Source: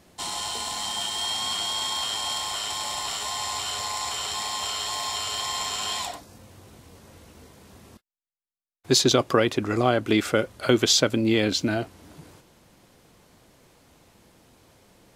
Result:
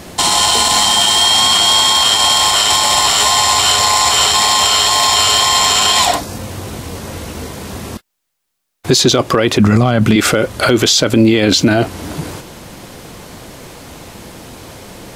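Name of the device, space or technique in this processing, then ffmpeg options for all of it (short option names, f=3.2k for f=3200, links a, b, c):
loud club master: -filter_complex "[0:a]asettb=1/sr,asplit=3[a][b][c];[a]atrim=end=9.594[d];[b]atrim=start=9.59:end=10.16,asetpts=PTS-STARTPTS,afade=t=in:d=0.004:c=qsin,afade=t=out:st=0.566:d=0.004:c=qsin,lowshelf=f=250:t=q:w=3:g=6[e];[c]atrim=start=10.156[f];[d][e]acrossfade=d=0.004:c1=hsin:c2=qsin[g];[g][f]acrossfade=d=0.004:c1=qsin:c2=hsin,acompressor=threshold=-30dB:ratio=1.5,asoftclip=type=hard:threshold=-13.5dB,alimiter=level_in=24dB:limit=-1dB:release=50:level=0:latency=1,volume=-1dB"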